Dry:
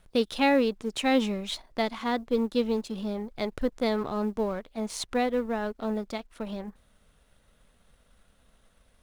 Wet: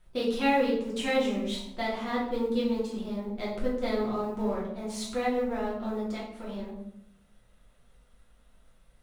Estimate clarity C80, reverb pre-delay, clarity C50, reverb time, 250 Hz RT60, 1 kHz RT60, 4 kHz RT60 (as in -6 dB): 7.0 dB, 3 ms, 3.5 dB, 0.75 s, 1.1 s, 0.70 s, 0.50 s